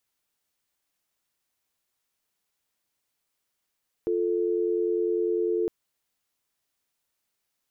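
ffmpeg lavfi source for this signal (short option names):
-f lavfi -i "aevalsrc='0.0531*(sin(2*PI*350*t)+sin(2*PI*440*t))':d=1.61:s=44100"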